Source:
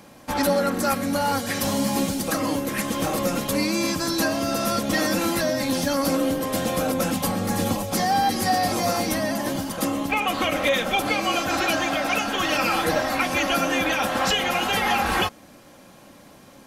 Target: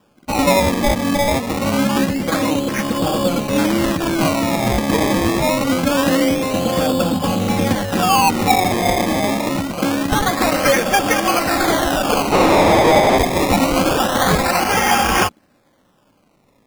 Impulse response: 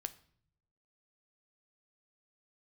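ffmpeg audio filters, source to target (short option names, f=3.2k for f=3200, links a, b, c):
-filter_complex "[0:a]afwtdn=0.0282,acrusher=samples=21:mix=1:aa=0.000001:lfo=1:lforange=21:lforate=0.25,asettb=1/sr,asplit=3[a][b][c];[a]atrim=end=12.324[d];[b]atrim=start=12.32:end=13.18,asetpts=PTS-STARTPTS,afade=t=in:d=0.004:c=qsin,afade=t=out:st=0.856:d=0.004:c=qsin,asplit=2[e][f];[f]highpass=f=720:p=1,volume=26dB,asoftclip=type=tanh:threshold=-12.5dB[g];[e][g]amix=inputs=2:normalize=0,lowpass=f=4.2k:p=1,volume=-6dB[h];[c]atrim=start=13.176[i];[d][h]acrossfade=d=0.004:c1=hsin:c2=qsin[j];[j][i]acrossfade=d=0.004:c1=qsin:c2=hsin,volume=7dB"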